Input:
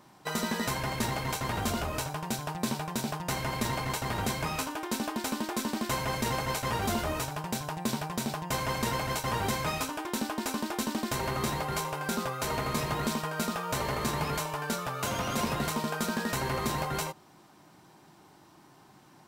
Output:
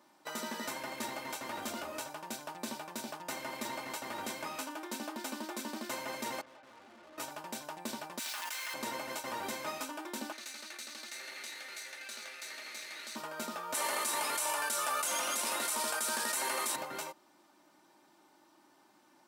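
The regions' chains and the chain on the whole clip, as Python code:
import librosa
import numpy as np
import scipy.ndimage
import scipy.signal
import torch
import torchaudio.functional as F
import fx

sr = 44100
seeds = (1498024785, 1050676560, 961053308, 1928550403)

y = fx.chain(x, sr, fx.lowpass(hz=1500.0, slope=24),
    fx.notch(hz=980.0, q=13.0),
    fx.tube_stage(drive_db=47.0, bias=0.75), at=(6.41, 7.18))
y = fx.chain(y, sr, fx.cheby1_highpass(hz=1900.0, order=2),
    fx.quant_companded(bits=4),
    fx.env_flatten(amount_pct=100), at=(8.19, 8.74))
y = fx.chain(y, sr, fx.lower_of_two(delay_ms=0.48),
    fx.bandpass_q(hz=4500.0, q=0.59),
    fx.env_flatten(amount_pct=50), at=(10.32, 13.16))
y = fx.chain(y, sr, fx.highpass(hz=860.0, slope=6),
    fx.peak_eq(hz=9600.0, db=12.0, octaves=0.88),
    fx.env_flatten(amount_pct=100), at=(13.74, 16.76))
y = scipy.signal.sosfilt(scipy.signal.butter(2, 270.0, 'highpass', fs=sr, output='sos'), y)
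y = y + 0.48 * np.pad(y, (int(3.4 * sr / 1000.0), 0))[:len(y)]
y = y * librosa.db_to_amplitude(-7.5)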